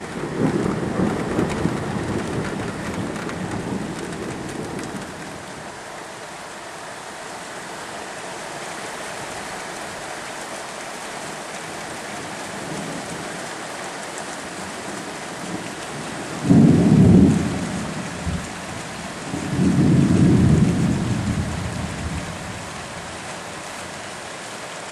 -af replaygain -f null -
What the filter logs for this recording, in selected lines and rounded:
track_gain = +1.8 dB
track_peak = 0.470